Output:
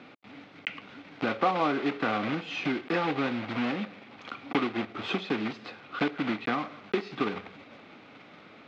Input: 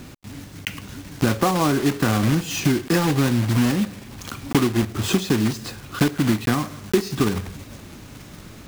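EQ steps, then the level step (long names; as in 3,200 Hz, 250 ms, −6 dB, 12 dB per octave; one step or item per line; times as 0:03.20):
loudspeaker in its box 370–3,000 Hz, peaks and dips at 370 Hz −6 dB, 590 Hz −3 dB, 1,000 Hz −7 dB, 1,700 Hz −8 dB, 2,900 Hz −5 dB
low-shelf EQ 500 Hz −3.5 dB
+1.0 dB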